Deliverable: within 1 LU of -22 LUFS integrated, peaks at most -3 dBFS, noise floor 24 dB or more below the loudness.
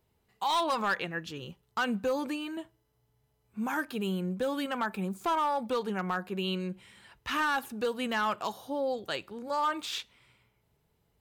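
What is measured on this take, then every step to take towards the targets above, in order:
clipped 0.9%; flat tops at -23.0 dBFS; loudness -32.0 LUFS; peak -23.0 dBFS; loudness target -22.0 LUFS
-> clip repair -23 dBFS; gain +10 dB

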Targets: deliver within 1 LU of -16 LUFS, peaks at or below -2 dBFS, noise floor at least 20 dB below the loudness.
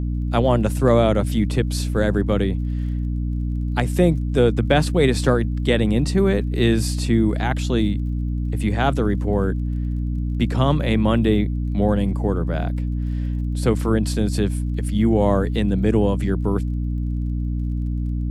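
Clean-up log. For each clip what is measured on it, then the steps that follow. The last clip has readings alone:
ticks 31/s; hum 60 Hz; harmonics up to 300 Hz; hum level -21 dBFS; loudness -21.0 LUFS; peak -4.0 dBFS; loudness target -16.0 LUFS
-> de-click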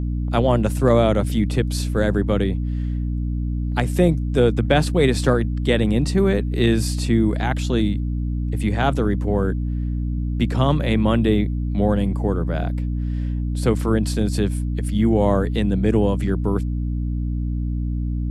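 ticks 0.055/s; hum 60 Hz; harmonics up to 300 Hz; hum level -21 dBFS
-> notches 60/120/180/240/300 Hz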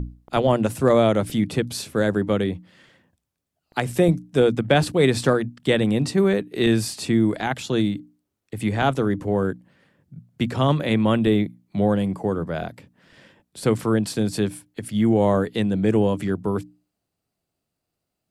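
hum none; loudness -22.0 LUFS; peak -4.0 dBFS; loudness target -16.0 LUFS
-> gain +6 dB; limiter -2 dBFS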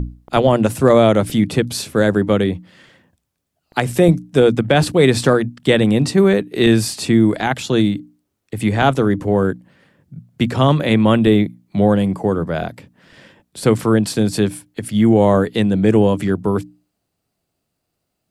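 loudness -16.0 LUFS; peak -2.0 dBFS; noise floor -75 dBFS

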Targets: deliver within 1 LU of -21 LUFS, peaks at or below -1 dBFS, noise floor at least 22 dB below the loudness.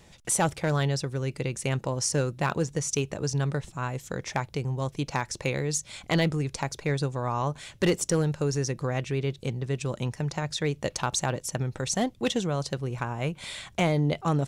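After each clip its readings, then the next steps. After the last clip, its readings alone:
clipped 0.4%; flat tops at -16.5 dBFS; loudness -29.0 LUFS; peak -16.5 dBFS; loudness target -21.0 LUFS
-> clip repair -16.5 dBFS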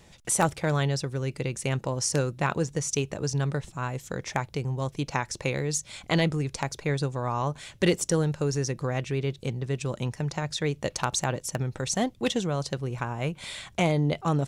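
clipped 0.0%; loudness -28.5 LUFS; peak -7.5 dBFS; loudness target -21.0 LUFS
-> gain +7.5 dB; limiter -1 dBFS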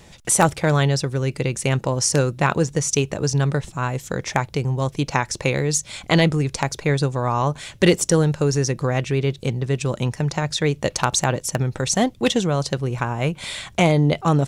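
loudness -21.0 LUFS; peak -1.0 dBFS; noise floor -47 dBFS

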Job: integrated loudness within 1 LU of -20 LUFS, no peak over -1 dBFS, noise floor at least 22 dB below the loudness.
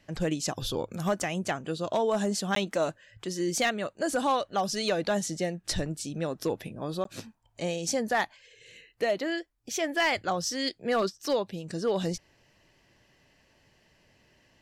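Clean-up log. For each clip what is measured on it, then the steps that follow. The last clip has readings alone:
clipped 0.3%; flat tops at -19.0 dBFS; dropouts 2; longest dropout 13 ms; loudness -30.0 LUFS; peak -19.0 dBFS; loudness target -20.0 LUFS
-> clip repair -19 dBFS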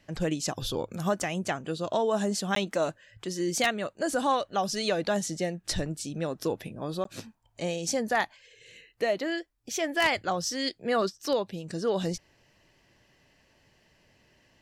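clipped 0.0%; dropouts 2; longest dropout 13 ms
-> interpolate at 2.55/7.04, 13 ms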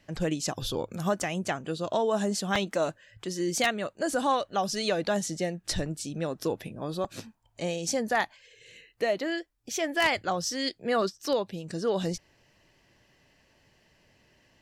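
dropouts 0; loudness -30.0 LUFS; peak -10.0 dBFS; loudness target -20.0 LUFS
-> gain +10 dB; limiter -1 dBFS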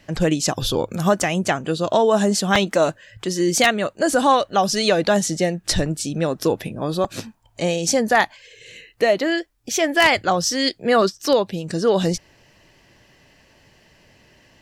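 loudness -20.0 LUFS; peak -1.0 dBFS; noise floor -55 dBFS

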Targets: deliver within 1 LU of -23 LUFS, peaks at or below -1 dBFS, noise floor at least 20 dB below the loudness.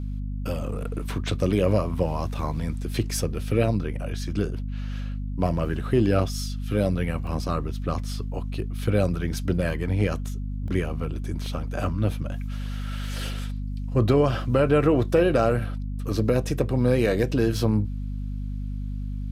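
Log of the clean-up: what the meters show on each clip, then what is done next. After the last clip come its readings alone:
dropouts 4; longest dropout 1.3 ms; hum 50 Hz; harmonics up to 250 Hz; hum level -27 dBFS; loudness -26.0 LUFS; peak -8.5 dBFS; loudness target -23.0 LUFS
-> interpolate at 7.27/10.68/11.46/13.39, 1.3 ms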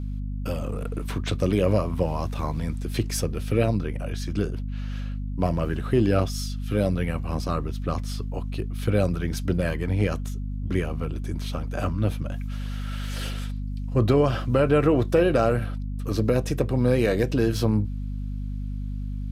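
dropouts 0; hum 50 Hz; harmonics up to 250 Hz; hum level -27 dBFS
-> de-hum 50 Hz, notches 5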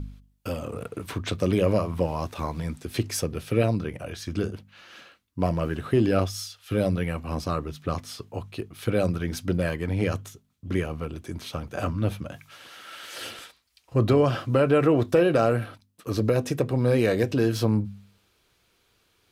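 hum none; loudness -26.5 LUFS; peak -9.0 dBFS; loudness target -23.0 LUFS
-> gain +3.5 dB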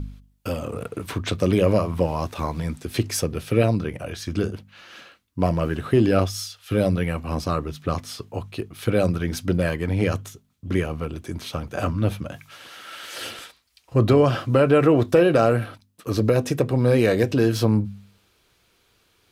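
loudness -23.0 LUFS; peak -5.5 dBFS; noise floor -64 dBFS

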